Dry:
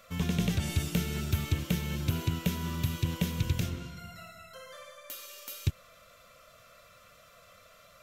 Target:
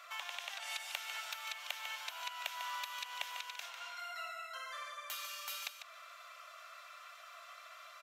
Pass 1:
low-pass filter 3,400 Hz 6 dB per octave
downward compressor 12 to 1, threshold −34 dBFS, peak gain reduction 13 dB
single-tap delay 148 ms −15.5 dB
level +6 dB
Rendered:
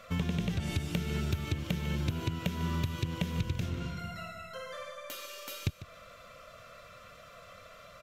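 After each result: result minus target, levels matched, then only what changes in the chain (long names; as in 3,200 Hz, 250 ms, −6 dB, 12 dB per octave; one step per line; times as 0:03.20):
1,000 Hz band −8.5 dB; echo-to-direct −6.5 dB
add after downward compressor: Butterworth high-pass 710 Hz 48 dB per octave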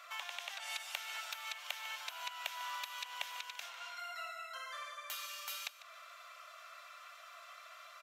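echo-to-direct −6.5 dB
change: single-tap delay 148 ms −9 dB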